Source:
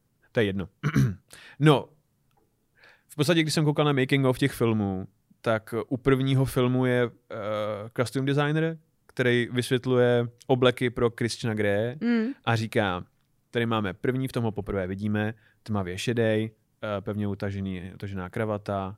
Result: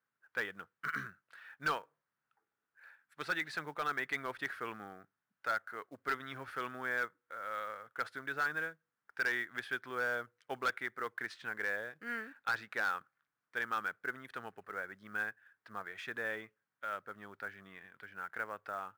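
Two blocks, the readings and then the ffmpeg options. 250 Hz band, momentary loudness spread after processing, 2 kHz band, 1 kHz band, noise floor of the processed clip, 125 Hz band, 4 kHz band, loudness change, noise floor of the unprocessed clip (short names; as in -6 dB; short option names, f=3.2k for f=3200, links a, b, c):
-25.0 dB, 12 LU, -3.0 dB, -6.5 dB, under -85 dBFS, -31.0 dB, -15.0 dB, -12.5 dB, -70 dBFS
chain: -af "bandpass=f=1.5k:t=q:w=3.1:csg=0,asoftclip=type=hard:threshold=-26.5dB,acrusher=bits=6:mode=log:mix=0:aa=0.000001"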